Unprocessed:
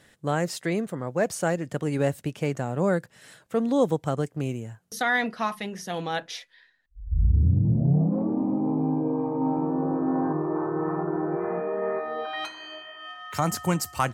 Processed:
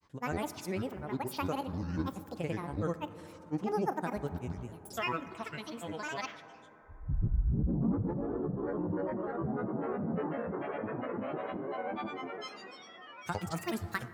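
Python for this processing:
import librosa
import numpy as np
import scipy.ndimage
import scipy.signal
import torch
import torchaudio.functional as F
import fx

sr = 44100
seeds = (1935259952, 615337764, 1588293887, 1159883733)

y = fx.granulator(x, sr, seeds[0], grain_ms=100.0, per_s=20.0, spray_ms=100.0, spread_st=12)
y = fx.rev_plate(y, sr, seeds[1], rt60_s=3.9, hf_ratio=0.25, predelay_ms=0, drr_db=12.0)
y = y * 10.0 ** (-8.5 / 20.0)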